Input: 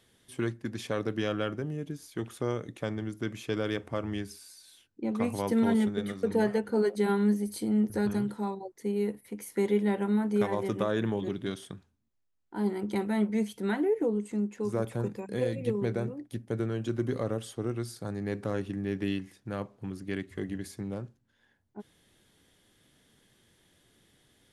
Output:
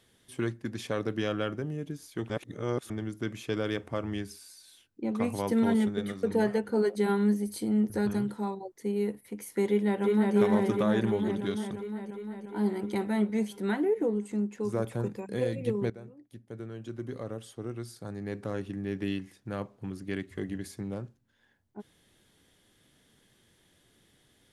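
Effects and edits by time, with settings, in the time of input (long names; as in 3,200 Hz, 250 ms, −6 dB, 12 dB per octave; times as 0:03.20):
0:02.30–0:02.90: reverse
0:09.68–0:10.35: delay throw 350 ms, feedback 75%, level −1.5 dB
0:15.90–0:19.59: fade in, from −15.5 dB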